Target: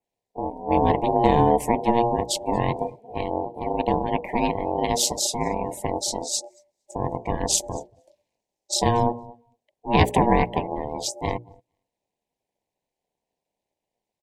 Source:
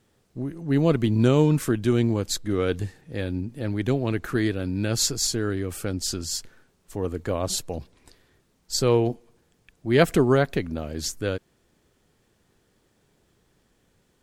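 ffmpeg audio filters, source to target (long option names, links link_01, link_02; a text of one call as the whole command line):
ffmpeg -i in.wav -filter_complex "[0:a]asettb=1/sr,asplit=3[link_01][link_02][link_03];[link_01]atrim=end=6.334[link_04];[link_02]atrim=start=6.33:end=8.74,asetpts=PTS-STARTPTS,afade=type=in:duration=0.004:curve=qsin,afade=type=out:start_time=2.406:duration=0.004:curve=qsin,equalizer=frequency=6300:width_type=o:width=0.8:gain=7.5[link_05];[link_03]atrim=start=8.736[link_06];[link_04][link_05]acrossfade=duration=0.004:curve1=hsin:curve2=qsin[link_07];[link_07][link_06]acrossfade=duration=0.004:curve1=qsin:curve2=hsin,tremolo=f=230:d=0.889,adynamicequalizer=threshold=0.00501:dfrequency=4400:dqfactor=0.98:tfrequency=4400:tqfactor=0.98:attack=5:release=100:ratio=0.375:range=2.5:mode=cutabove:tftype=bell,aeval=exprs='val(0)*sin(2*PI*590*n/s)':channel_layout=same,asuperstop=centerf=1300:order=4:qfactor=1.6,bandreject=frequency=60:width_type=h:width=6,bandreject=frequency=120:width_type=h:width=6,bandreject=frequency=180:width_type=h:width=6,bandreject=frequency=240:width_type=h:width=6,bandreject=frequency=300:width_type=h:width=6,bandreject=frequency=360:width_type=h:width=6,bandreject=frequency=420:width_type=h:width=6,bandreject=frequency=480:width_type=h:width=6,aecho=1:1:230|460:0.0944|0.0227,afftdn=noise_reduction=21:noise_floor=-48,asoftclip=type=tanh:threshold=-7dB,volume=9dB" out.wav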